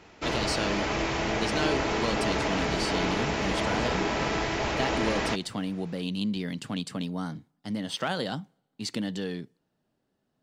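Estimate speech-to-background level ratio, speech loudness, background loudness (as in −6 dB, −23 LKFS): −4.5 dB, −33.0 LKFS, −28.5 LKFS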